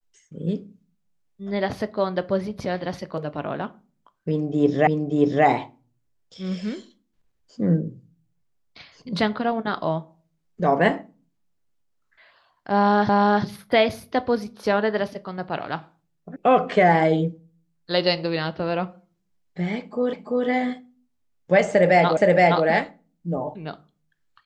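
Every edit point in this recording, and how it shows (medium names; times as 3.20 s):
4.87 s: repeat of the last 0.58 s
13.09 s: repeat of the last 0.35 s
16.36 s: sound stops dead
20.13 s: repeat of the last 0.34 s
22.17 s: repeat of the last 0.47 s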